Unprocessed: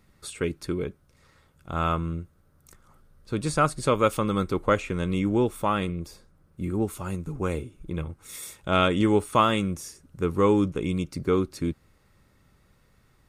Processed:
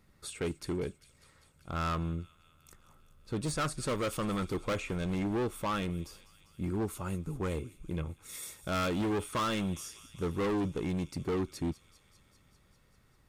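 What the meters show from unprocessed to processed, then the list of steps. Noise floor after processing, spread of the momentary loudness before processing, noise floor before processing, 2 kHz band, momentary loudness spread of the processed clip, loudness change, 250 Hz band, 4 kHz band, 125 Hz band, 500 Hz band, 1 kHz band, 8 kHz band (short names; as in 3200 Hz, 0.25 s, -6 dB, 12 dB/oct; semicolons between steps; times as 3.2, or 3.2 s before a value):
-66 dBFS, 15 LU, -63 dBFS, -7.5 dB, 9 LU, -8.5 dB, -7.5 dB, -6.5 dB, -6.5 dB, -9.5 dB, -10.0 dB, -3.5 dB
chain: thin delay 0.198 s, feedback 74%, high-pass 3500 Hz, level -14.5 dB; hard clip -24.5 dBFS, distortion -6 dB; gain -4 dB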